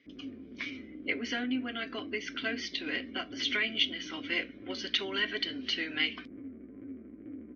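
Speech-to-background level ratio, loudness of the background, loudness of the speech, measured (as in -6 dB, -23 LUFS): 13.0 dB, -46.0 LUFS, -33.0 LUFS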